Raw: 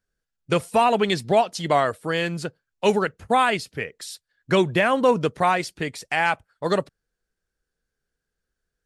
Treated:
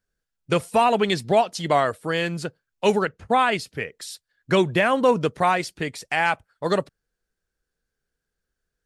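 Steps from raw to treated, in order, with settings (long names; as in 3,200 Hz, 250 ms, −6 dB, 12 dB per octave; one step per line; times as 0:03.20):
0:03.05–0:03.52: high-frequency loss of the air 55 metres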